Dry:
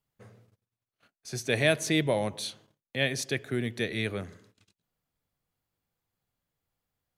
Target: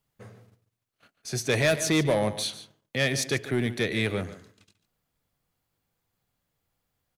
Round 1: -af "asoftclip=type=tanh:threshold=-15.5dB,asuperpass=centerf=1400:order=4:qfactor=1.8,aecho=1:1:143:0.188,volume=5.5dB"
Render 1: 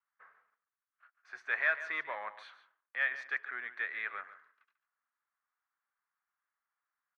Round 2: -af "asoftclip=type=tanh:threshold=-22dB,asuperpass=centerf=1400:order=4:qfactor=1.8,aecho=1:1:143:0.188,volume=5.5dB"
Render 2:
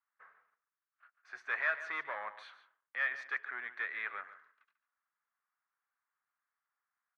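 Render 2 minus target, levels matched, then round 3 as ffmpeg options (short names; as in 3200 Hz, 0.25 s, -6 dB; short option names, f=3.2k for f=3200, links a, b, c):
1000 Hz band +4.5 dB
-af "asoftclip=type=tanh:threshold=-22dB,aecho=1:1:143:0.188,volume=5.5dB"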